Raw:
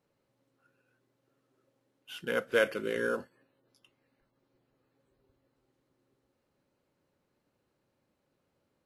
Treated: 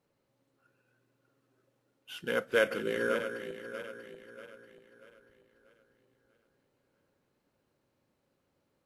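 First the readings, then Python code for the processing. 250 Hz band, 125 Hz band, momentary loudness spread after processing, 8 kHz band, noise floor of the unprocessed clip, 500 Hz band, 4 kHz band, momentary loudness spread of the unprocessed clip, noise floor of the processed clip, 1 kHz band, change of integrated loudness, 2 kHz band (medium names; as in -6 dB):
+0.5 dB, +1.0 dB, 21 LU, +1.0 dB, -79 dBFS, +0.5 dB, +1.0 dB, 12 LU, -78 dBFS, +1.0 dB, -1.0 dB, +1.0 dB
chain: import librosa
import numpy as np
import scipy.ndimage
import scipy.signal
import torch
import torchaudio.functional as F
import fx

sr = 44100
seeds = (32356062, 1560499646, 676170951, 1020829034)

y = fx.reverse_delay_fb(x, sr, ms=319, feedback_pct=63, wet_db=-9)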